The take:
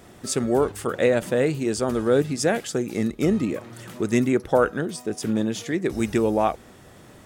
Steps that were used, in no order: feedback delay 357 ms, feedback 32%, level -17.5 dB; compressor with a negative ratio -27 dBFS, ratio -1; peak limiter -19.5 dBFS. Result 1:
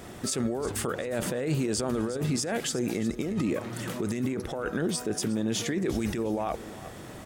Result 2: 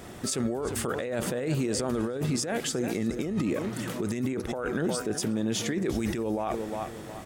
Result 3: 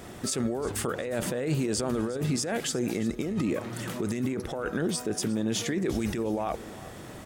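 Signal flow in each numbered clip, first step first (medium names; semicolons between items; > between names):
compressor with a negative ratio > feedback delay > peak limiter; feedback delay > compressor with a negative ratio > peak limiter; compressor with a negative ratio > peak limiter > feedback delay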